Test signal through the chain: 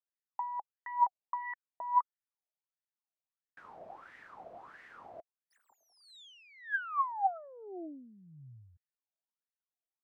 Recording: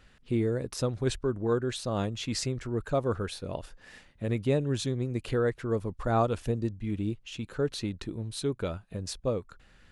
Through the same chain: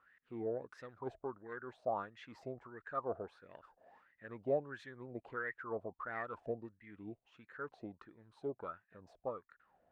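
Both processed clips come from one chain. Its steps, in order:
phase distortion by the signal itself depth 0.057 ms
LFO wah 1.5 Hz 650–1,900 Hz, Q 11
tilt shelving filter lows +6.5 dB, about 750 Hz
level +8.5 dB

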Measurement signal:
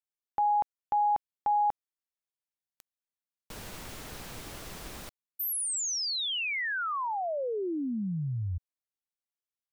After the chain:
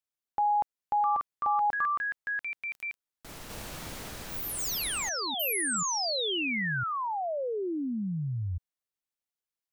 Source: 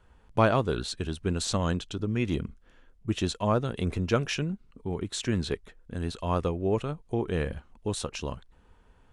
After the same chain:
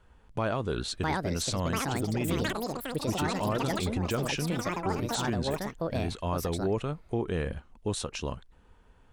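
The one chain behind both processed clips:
delay with pitch and tempo change per echo 770 ms, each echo +6 semitones, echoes 3
brickwall limiter −20 dBFS

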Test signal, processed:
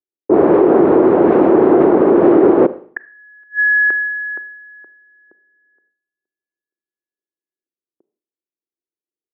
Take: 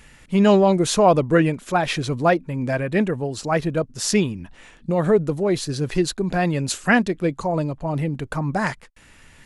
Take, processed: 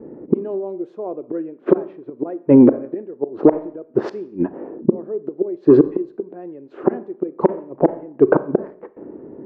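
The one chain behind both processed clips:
noise gate with hold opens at −47 dBFS
low-pass that shuts in the quiet parts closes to 380 Hz, open at −16 dBFS
gate with flip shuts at −17 dBFS, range −37 dB
four-pole ladder band-pass 400 Hz, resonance 60%
soft clipping −28 dBFS
four-comb reverb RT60 0.52 s, combs from 29 ms, DRR 15.5 dB
boost into a limiter +35.5 dB
level −1 dB

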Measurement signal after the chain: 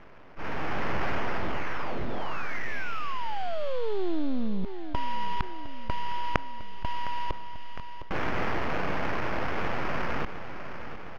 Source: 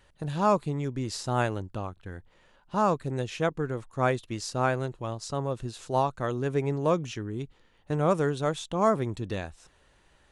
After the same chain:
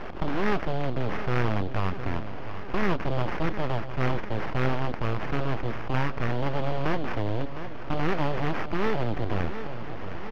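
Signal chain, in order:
compressor on every frequency bin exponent 0.6
high-pass filter 120 Hz 12 dB per octave
low-pass that shuts in the quiet parts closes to 1,300 Hz, open at −21 dBFS
bass and treble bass +8 dB, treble +14 dB
sample-rate reduction 3,900 Hz, jitter 20%
full-wave rectification
on a send: repeating echo 709 ms, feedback 47%, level −18 dB
on the sum: speech leveller 2 s
high-frequency loss of the air 290 metres
envelope flattener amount 50%
level −4.5 dB

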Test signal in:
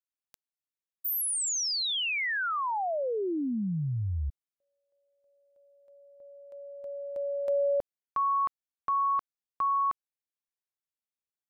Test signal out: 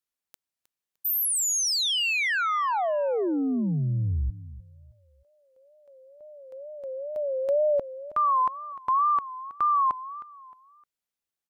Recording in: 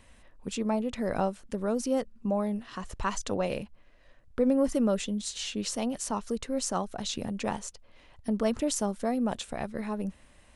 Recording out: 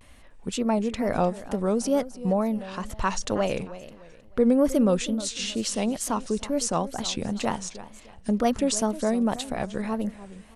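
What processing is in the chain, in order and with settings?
repeating echo 309 ms, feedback 33%, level −15.5 dB
tape wow and flutter 2.1 Hz 130 cents
level +4.5 dB

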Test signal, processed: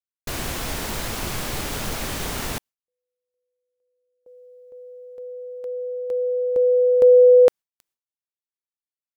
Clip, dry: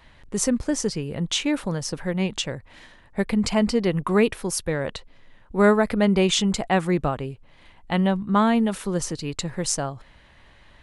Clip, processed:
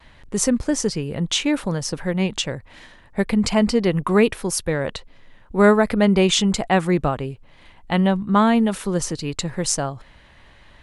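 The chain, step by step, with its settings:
noise gate with hold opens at −50 dBFS
level +3 dB

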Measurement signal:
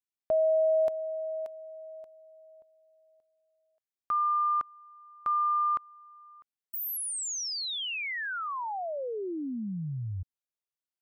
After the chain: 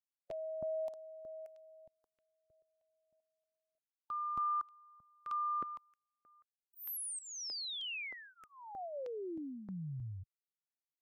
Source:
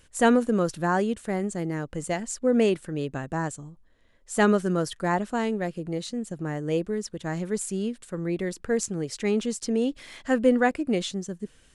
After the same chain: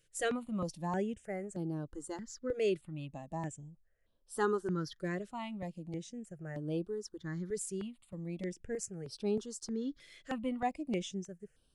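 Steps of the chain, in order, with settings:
noise reduction from a noise print of the clip's start 6 dB
step-sequenced phaser 3.2 Hz 240–6,900 Hz
level −7 dB

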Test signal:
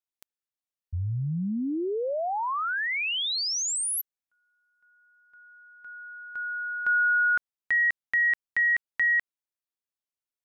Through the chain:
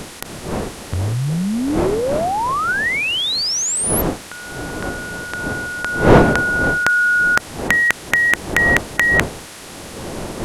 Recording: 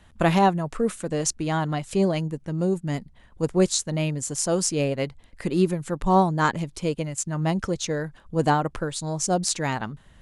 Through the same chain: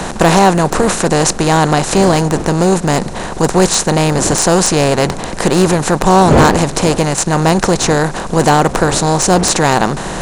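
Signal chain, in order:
compressor on every frequency bin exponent 0.4
wind on the microphone 520 Hz −30 dBFS
gain into a clipping stage and back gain 10 dB
level +7.5 dB

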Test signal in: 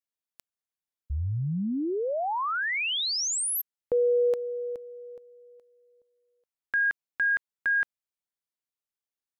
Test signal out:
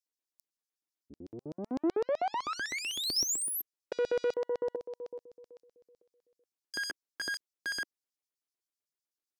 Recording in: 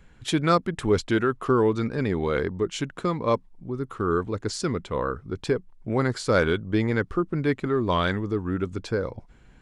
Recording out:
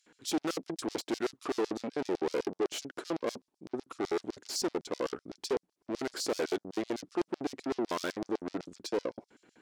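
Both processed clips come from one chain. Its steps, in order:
tube saturation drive 33 dB, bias 0.6
auto-filter high-pass square 7.9 Hz 320–5,100 Hz
dynamic equaliser 660 Hz, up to +5 dB, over −48 dBFS, Q 1.5

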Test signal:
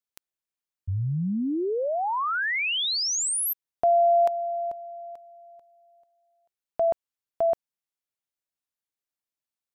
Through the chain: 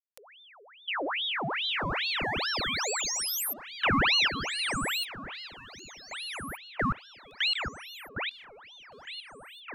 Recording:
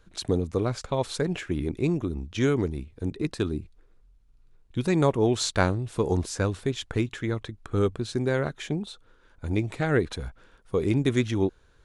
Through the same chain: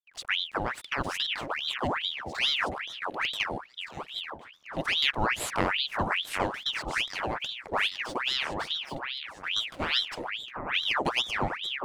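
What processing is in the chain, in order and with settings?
slack as between gear wheels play −43.5 dBFS
delay that swaps between a low-pass and a high-pass 759 ms, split 1,200 Hz, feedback 63%, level −6 dB
ring modulator whose carrier an LFO sweeps 2,000 Hz, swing 80%, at 2.4 Hz
level −2 dB

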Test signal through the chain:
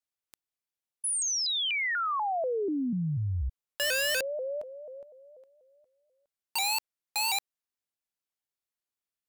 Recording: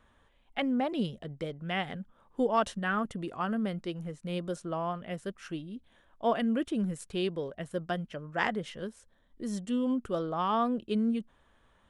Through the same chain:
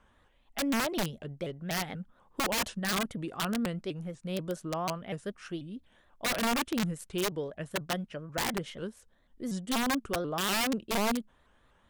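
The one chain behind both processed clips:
wrap-around overflow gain 24 dB
pitch modulation by a square or saw wave saw up 4.1 Hz, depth 160 cents

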